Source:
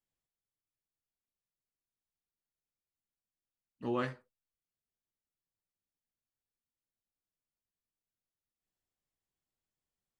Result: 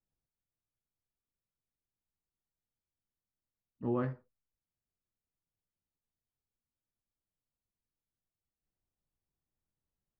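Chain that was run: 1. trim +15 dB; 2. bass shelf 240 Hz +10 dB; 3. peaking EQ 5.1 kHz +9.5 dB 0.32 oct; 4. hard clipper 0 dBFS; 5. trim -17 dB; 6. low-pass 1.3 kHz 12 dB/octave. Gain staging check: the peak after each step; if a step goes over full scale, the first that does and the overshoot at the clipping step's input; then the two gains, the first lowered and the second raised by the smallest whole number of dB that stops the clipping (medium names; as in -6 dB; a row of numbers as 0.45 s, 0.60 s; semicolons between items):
-6.5 dBFS, -4.0 dBFS, -4.0 dBFS, -4.0 dBFS, -21.0 dBFS, -22.0 dBFS; nothing clips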